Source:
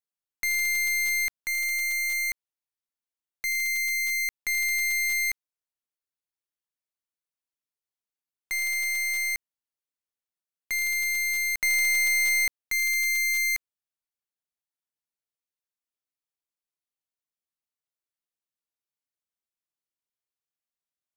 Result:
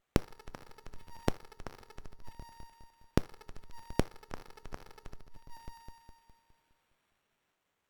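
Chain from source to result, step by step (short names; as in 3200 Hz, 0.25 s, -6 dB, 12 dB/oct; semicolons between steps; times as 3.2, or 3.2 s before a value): split-band echo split 2200 Hz, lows 0.195 s, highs 0.552 s, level -12.5 dB; in parallel at +2.5 dB: limiter -31.5 dBFS, peak gain reduction 12 dB; on the sum: compressor 5:1, threshold -26 dBFS, peak gain reduction 6 dB; treble ducked by the level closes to 490 Hz, closed at -30 dBFS; on a send at -16.5 dB: reverb RT60 0.65 s, pre-delay 7 ms; on the sum: wide varispeed 2.68×; running maximum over 9 samples; gain +12.5 dB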